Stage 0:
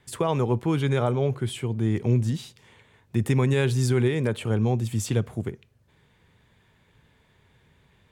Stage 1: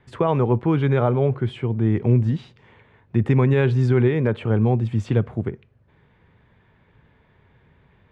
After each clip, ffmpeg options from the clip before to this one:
-af "lowpass=2100,volume=1.68"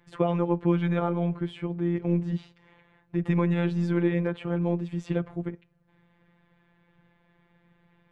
-af "afftfilt=real='hypot(re,im)*cos(PI*b)':imag='0':win_size=1024:overlap=0.75,volume=0.794"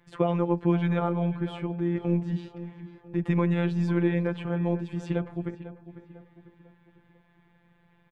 -filter_complex "[0:a]asplit=2[s0][s1];[s1]adelay=498,lowpass=f=2400:p=1,volume=0.224,asplit=2[s2][s3];[s3]adelay=498,lowpass=f=2400:p=1,volume=0.45,asplit=2[s4][s5];[s5]adelay=498,lowpass=f=2400:p=1,volume=0.45,asplit=2[s6][s7];[s7]adelay=498,lowpass=f=2400:p=1,volume=0.45[s8];[s0][s2][s4][s6][s8]amix=inputs=5:normalize=0"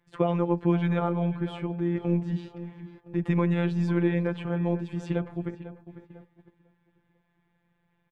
-af "agate=range=0.355:threshold=0.00355:ratio=16:detection=peak"

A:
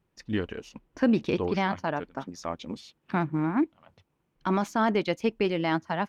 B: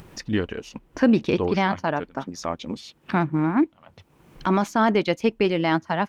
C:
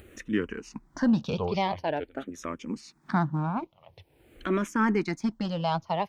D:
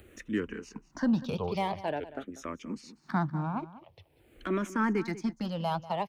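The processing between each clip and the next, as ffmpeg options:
-af "acompressor=mode=upward:threshold=0.0224:ratio=2.5,volume=1.78"
-filter_complex "[0:a]asoftclip=type=tanh:threshold=0.355,asplit=2[s0][s1];[s1]afreqshift=-0.46[s2];[s0][s2]amix=inputs=2:normalize=1,volume=0.841"
-filter_complex "[0:a]acrossover=split=180|570|2300[s0][s1][s2][s3];[s3]asoftclip=type=hard:threshold=0.0119[s4];[s0][s1][s2][s4]amix=inputs=4:normalize=0,asplit=2[s5][s6];[s6]adelay=192.4,volume=0.158,highshelf=f=4000:g=-4.33[s7];[s5][s7]amix=inputs=2:normalize=0,volume=0.668"

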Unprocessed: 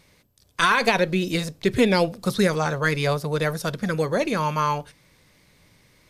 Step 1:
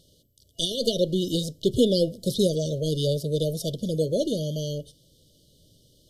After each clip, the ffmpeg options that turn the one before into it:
-af "afftfilt=real='re*(1-between(b*sr/4096,670,2900))':imag='im*(1-between(b*sr/4096,670,2900))':win_size=4096:overlap=0.75,equalizer=f=200:t=o:w=0.33:g=-4,equalizer=f=800:t=o:w=0.33:g=-11,equalizer=f=2500:t=o:w=0.33:g=8"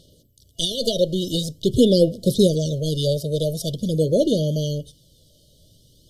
-af "aphaser=in_gain=1:out_gain=1:delay=1.6:decay=0.39:speed=0.46:type=sinusoidal,volume=1.41"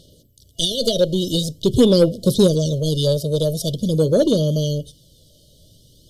-af "aeval=exprs='0.596*(cos(1*acos(clip(val(0)/0.596,-1,1)))-cos(1*PI/2))+0.0299*(cos(5*acos(clip(val(0)/0.596,-1,1)))-cos(5*PI/2))':c=same,volume=1.19"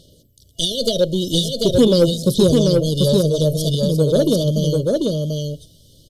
-af "aecho=1:1:741:0.708"

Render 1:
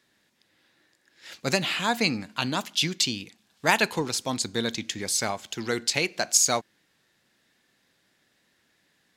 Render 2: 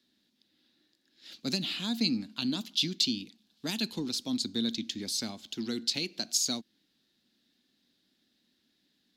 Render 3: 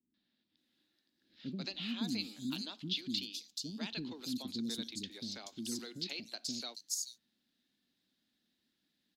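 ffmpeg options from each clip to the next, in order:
-filter_complex "[0:a]acrossover=split=310|3000[s0][s1][s2];[s1]acompressor=threshold=0.0355:ratio=6[s3];[s0][s3][s2]amix=inputs=3:normalize=0,equalizer=f=125:t=o:w=1:g=-7,equalizer=f=250:t=o:w=1:g=11,equalizer=f=500:t=o:w=1:g=-6,equalizer=f=1000:t=o:w=1:g=-7,equalizer=f=2000:t=o:w=1:g=-8,equalizer=f=4000:t=o:w=1:g=9,equalizer=f=8000:t=o:w=1:g=-7,volume=0.501"
-filter_complex "[0:a]acrossover=split=390|4900[s0][s1][s2];[s1]adelay=140[s3];[s2]adelay=570[s4];[s0][s3][s4]amix=inputs=3:normalize=0,volume=0.501"

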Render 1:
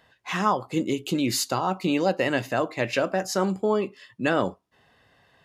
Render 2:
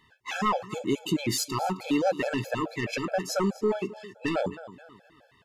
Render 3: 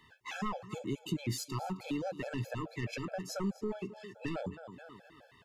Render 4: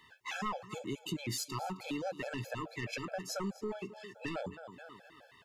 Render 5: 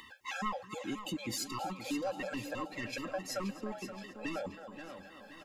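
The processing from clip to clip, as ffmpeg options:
-af "aecho=1:1:263|526|789:0.112|0.0438|0.0171,aeval=exprs='0.422*sin(PI/2*2*val(0)/0.422)':c=same,afftfilt=real='re*gt(sin(2*PI*4.7*pts/sr)*(1-2*mod(floor(b*sr/1024/440),2)),0)':imag='im*gt(sin(2*PI*4.7*pts/sr)*(1-2*mod(floor(b*sr/1024/440),2)),0)':win_size=1024:overlap=0.75,volume=0.376"
-filter_complex "[0:a]acrossover=split=160[s0][s1];[s1]acompressor=threshold=0.00447:ratio=2[s2];[s0][s2]amix=inputs=2:normalize=0"
-af "lowshelf=f=400:g=-8,volume=1.33"
-af "aecho=1:1:3.7:0.54,acompressor=mode=upward:threshold=0.00501:ratio=2.5,aecho=1:1:525|1050|1575|2100|2625:0.282|0.141|0.0705|0.0352|0.0176,volume=0.891"

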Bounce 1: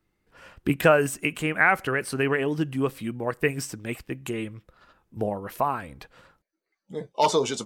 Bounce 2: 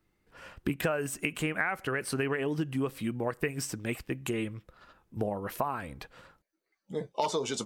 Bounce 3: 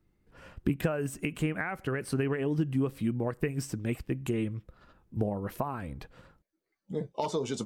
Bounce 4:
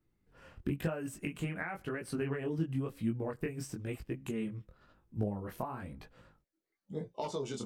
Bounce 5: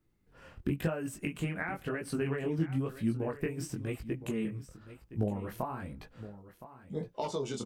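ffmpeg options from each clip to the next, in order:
-af "acompressor=threshold=0.0447:ratio=6"
-af "lowshelf=f=420:g=11.5,volume=0.531"
-af "flanger=delay=17.5:depth=7.1:speed=0.98,volume=0.75"
-af "aecho=1:1:1016:0.188,volume=1.33"

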